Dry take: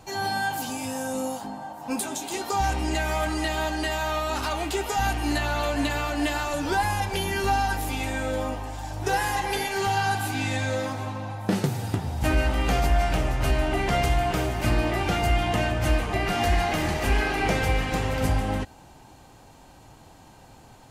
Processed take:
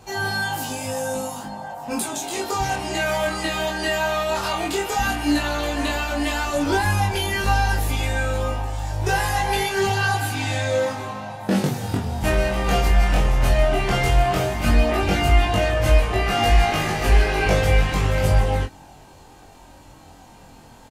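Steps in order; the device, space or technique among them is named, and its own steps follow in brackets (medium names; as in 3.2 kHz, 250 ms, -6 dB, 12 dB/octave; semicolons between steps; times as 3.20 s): double-tracked vocal (doubling 21 ms -4 dB; chorus 0.12 Hz, delay 18.5 ms, depth 6.9 ms); trim +5.5 dB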